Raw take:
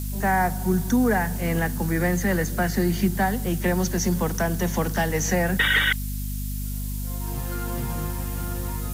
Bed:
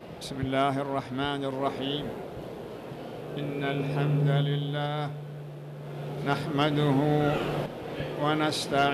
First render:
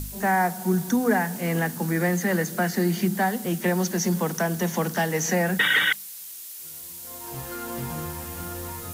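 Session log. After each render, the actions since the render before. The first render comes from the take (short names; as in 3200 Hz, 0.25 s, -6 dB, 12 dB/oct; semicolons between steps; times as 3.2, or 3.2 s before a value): de-hum 50 Hz, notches 5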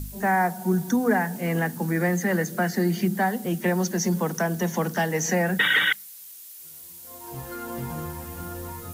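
denoiser 6 dB, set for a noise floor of -39 dBFS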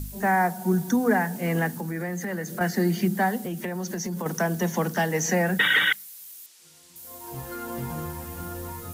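1.78–2.61 compressor 2.5:1, threshold -30 dBFS; 3.38–4.26 compressor, threshold -27 dBFS; 6.46–6.96 BPF 130–6600 Hz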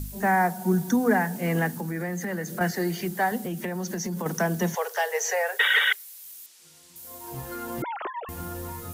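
2.71–3.32 bell 220 Hz -14.5 dB 0.56 oct; 4.75–6.24 Chebyshev high-pass 400 Hz, order 10; 7.82–8.29 sine-wave speech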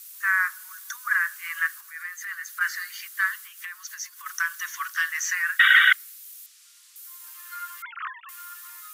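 steep high-pass 1100 Hz 96 dB/oct; dynamic EQ 1400 Hz, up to +8 dB, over -42 dBFS, Q 1.2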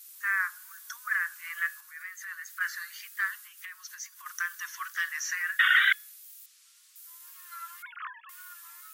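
wow and flutter 63 cents; resonator 840 Hz, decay 0.39 s, mix 50%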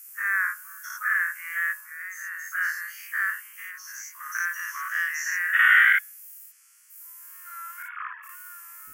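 spectral dilation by 0.12 s; fixed phaser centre 1600 Hz, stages 4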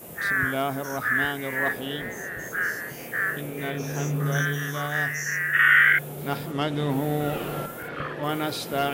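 add bed -1.5 dB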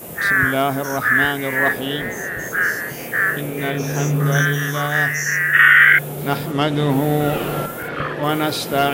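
gain +8 dB; limiter -1 dBFS, peak gain reduction 3 dB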